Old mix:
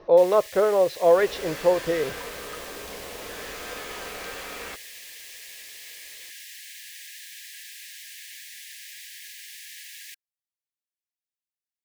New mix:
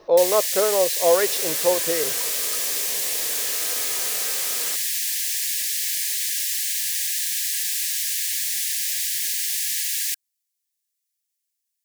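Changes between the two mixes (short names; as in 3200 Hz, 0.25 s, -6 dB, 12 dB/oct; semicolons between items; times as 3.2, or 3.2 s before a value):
first sound +8.5 dB; second sound: add BPF 110–2200 Hz; master: add tone controls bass -6 dB, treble +12 dB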